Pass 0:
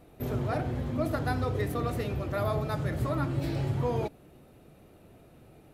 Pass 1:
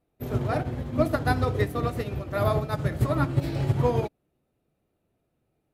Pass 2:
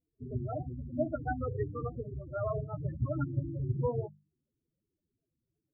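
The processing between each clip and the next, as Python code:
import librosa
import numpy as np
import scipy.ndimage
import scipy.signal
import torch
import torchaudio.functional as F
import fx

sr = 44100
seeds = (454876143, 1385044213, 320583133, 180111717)

y1 = fx.upward_expand(x, sr, threshold_db=-45.0, expansion=2.5)
y1 = y1 * librosa.db_to_amplitude(9.0)
y2 = fx.hum_notches(y1, sr, base_hz=50, count=4)
y2 = fx.spec_topn(y2, sr, count=8)
y2 = y2 * librosa.db_to_amplitude(-7.0)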